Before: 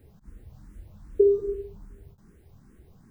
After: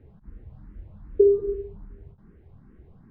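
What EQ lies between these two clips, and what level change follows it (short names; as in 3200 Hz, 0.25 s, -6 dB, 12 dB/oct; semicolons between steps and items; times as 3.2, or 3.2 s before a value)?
air absorption 460 m; +3.0 dB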